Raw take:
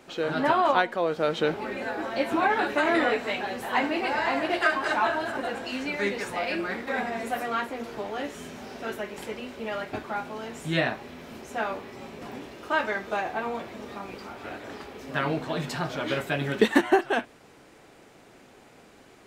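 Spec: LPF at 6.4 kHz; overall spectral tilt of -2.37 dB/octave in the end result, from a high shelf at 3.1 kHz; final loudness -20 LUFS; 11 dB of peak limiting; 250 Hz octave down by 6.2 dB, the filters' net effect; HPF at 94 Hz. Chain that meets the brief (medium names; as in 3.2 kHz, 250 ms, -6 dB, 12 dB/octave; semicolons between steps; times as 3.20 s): high-pass 94 Hz; low-pass 6.4 kHz; peaking EQ 250 Hz -8.5 dB; treble shelf 3.1 kHz -3.5 dB; trim +11.5 dB; peak limiter -7.5 dBFS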